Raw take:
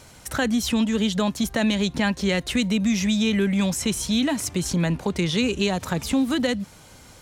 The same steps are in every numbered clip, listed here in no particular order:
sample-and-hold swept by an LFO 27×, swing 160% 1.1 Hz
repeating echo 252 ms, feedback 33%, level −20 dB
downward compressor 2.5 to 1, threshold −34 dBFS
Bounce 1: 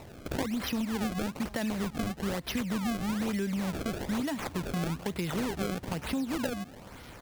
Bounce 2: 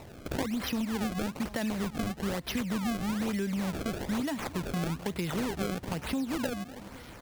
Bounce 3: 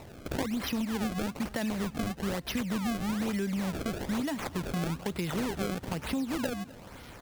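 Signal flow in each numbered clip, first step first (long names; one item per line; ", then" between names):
downward compressor, then repeating echo, then sample-and-hold swept by an LFO
repeating echo, then downward compressor, then sample-and-hold swept by an LFO
downward compressor, then sample-and-hold swept by an LFO, then repeating echo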